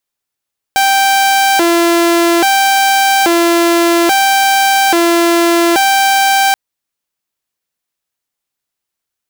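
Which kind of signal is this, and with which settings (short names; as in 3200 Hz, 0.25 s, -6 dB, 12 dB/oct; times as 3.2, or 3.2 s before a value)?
siren hi-lo 340–783 Hz 0.6/s saw -5.5 dBFS 5.78 s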